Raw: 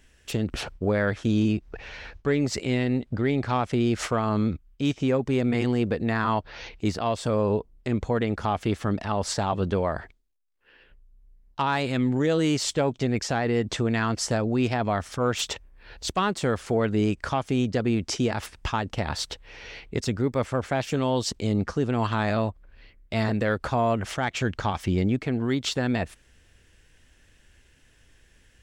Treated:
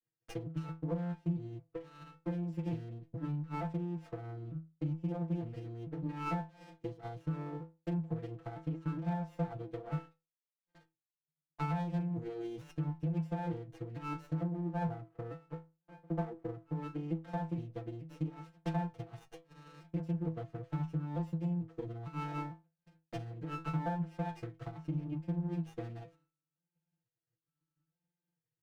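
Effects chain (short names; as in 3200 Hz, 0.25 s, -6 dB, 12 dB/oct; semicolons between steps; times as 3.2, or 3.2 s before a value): arpeggiated vocoder major triad, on A#2, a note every 0.45 s; 14.51–16.71 steep low-pass 1500 Hz 48 dB/oct; gate with hold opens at -52 dBFS; comb 6.1 ms, depth 96%; compressor 6:1, threshold -27 dBFS, peak gain reduction 14.5 dB; transient shaper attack +11 dB, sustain -5 dB; limiter -20 dBFS, peak gain reduction 12.5 dB; metallic resonator 160 Hz, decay 0.3 s, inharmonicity 0.008; running maximum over 9 samples; gain +4.5 dB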